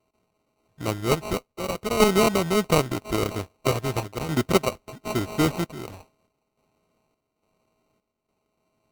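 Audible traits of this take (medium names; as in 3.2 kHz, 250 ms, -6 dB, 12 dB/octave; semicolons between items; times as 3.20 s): a buzz of ramps at a fixed pitch in blocks of 16 samples; random-step tremolo, depth 80%; aliases and images of a low sample rate 1.7 kHz, jitter 0%; Vorbis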